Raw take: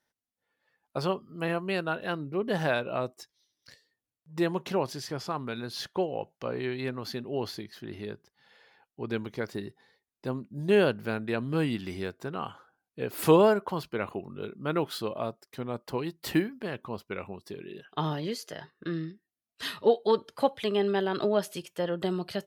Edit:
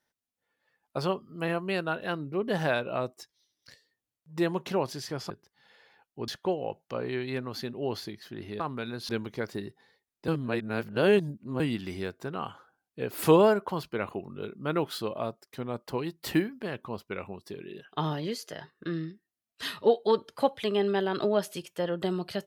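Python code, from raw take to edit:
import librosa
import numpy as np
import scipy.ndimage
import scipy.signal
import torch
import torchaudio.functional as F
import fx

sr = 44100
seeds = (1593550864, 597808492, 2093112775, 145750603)

y = fx.edit(x, sr, fx.swap(start_s=5.3, length_s=0.49, other_s=8.11, other_length_s=0.98),
    fx.reverse_span(start_s=10.28, length_s=1.32), tone=tone)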